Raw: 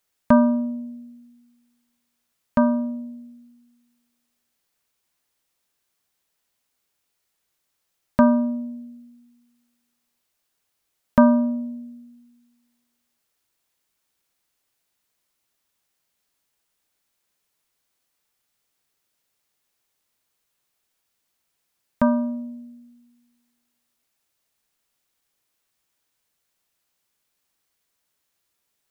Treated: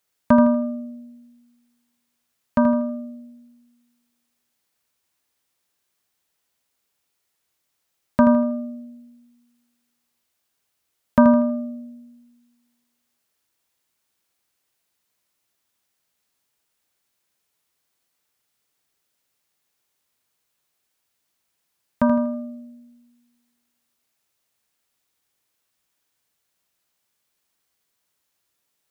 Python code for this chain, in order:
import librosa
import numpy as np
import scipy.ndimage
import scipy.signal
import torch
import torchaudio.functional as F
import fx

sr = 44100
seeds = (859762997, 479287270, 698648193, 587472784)

p1 = scipy.signal.sosfilt(scipy.signal.butter(2, 42.0, 'highpass', fs=sr, output='sos'), x)
y = p1 + fx.echo_feedback(p1, sr, ms=80, feedback_pct=36, wet_db=-8.5, dry=0)